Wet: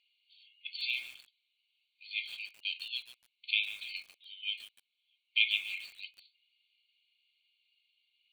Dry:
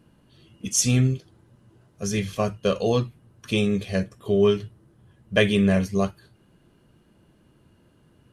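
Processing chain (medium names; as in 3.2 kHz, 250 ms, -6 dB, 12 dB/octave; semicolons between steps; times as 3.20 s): brick-wall FIR band-pass 2.1–4.6 kHz; bit-crushed delay 146 ms, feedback 35%, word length 7-bit, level -13.5 dB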